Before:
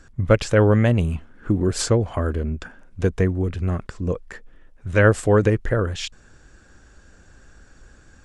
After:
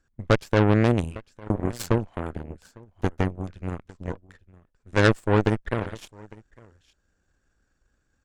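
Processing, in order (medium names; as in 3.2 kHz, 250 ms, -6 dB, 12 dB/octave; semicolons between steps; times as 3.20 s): delay 854 ms -13 dB; Chebyshev shaper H 2 -10 dB, 3 -25 dB, 4 -10 dB, 7 -20 dB, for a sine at -3.5 dBFS; trim -3.5 dB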